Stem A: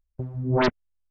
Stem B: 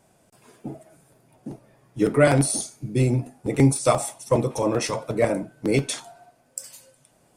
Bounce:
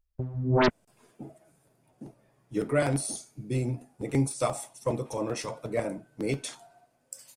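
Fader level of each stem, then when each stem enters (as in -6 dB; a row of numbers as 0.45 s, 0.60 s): -1.0 dB, -8.5 dB; 0.00 s, 0.55 s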